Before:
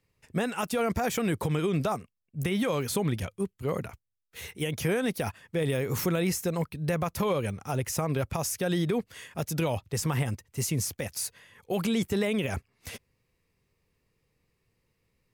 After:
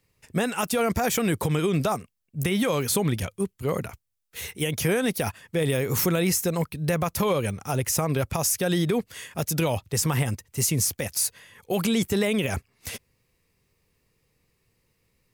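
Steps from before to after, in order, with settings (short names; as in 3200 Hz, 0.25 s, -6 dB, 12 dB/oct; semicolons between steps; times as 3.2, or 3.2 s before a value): high shelf 4700 Hz +6 dB; gain +3.5 dB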